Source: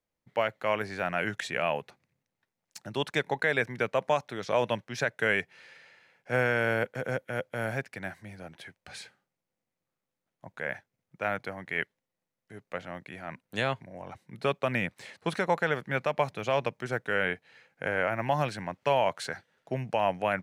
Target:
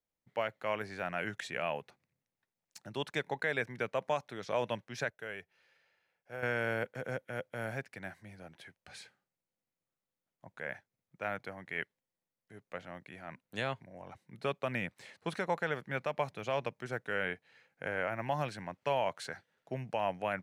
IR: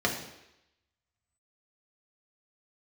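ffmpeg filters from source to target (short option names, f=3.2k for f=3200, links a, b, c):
-filter_complex "[0:a]asettb=1/sr,asplit=3[a][b][c];[a]atrim=end=5.104[d];[b]atrim=start=5.1:end=6.43,asetpts=PTS-STARTPTS,afade=t=in:d=0.004:c=qsin,afade=t=out:st=1.326:d=0.004:c=qsin,equalizer=f=125:t=o:w=1:g=-10,equalizer=f=250:t=o:w=1:g=-10,equalizer=f=500:t=o:w=1:g=-5,equalizer=f=1k:t=o:w=1:g=-6,equalizer=f=2k:t=o:w=1:g=-9,equalizer=f=4k:t=o:w=1:g=-6,equalizer=f=8k:t=o:w=1:g=-11[e];[c]atrim=start=6.426[f];[d][e]acrossfade=d=0.004:c1=hsin:c2=qsin[g];[g][f]acrossfade=d=0.004:c1=qsin:c2=hsin,volume=-6.5dB"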